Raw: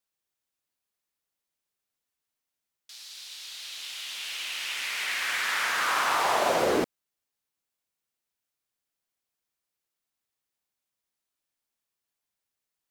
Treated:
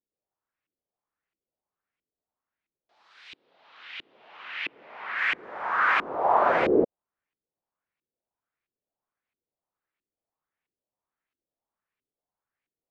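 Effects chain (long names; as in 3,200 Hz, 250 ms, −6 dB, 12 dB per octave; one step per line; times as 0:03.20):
0:03.35–0:05.18: Chebyshev band-pass filter 130–4,300 Hz, order 2
auto-filter low-pass saw up 1.5 Hz 320–2,500 Hz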